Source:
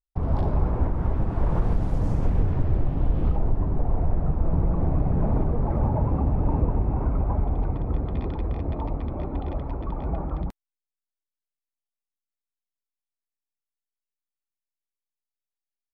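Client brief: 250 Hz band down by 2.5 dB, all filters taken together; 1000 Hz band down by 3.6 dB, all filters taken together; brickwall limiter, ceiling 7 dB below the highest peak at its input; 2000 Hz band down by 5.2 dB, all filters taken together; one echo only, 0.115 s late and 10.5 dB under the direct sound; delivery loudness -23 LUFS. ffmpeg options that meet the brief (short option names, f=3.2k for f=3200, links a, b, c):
-af "equalizer=f=250:t=o:g=-3.5,equalizer=f=1k:t=o:g=-3.5,equalizer=f=2k:t=o:g=-5.5,alimiter=limit=-18dB:level=0:latency=1,aecho=1:1:115:0.299,volume=6dB"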